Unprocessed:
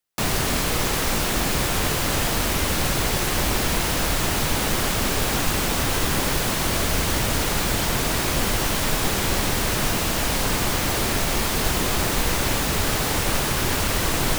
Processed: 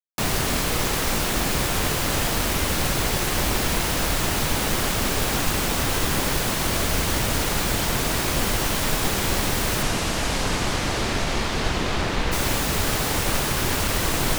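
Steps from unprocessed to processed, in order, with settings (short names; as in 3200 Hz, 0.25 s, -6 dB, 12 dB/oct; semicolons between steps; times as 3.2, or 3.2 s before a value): 9.82–12.31 LPF 10000 Hz -> 4000 Hz 12 dB/oct; crossover distortion -43.5 dBFS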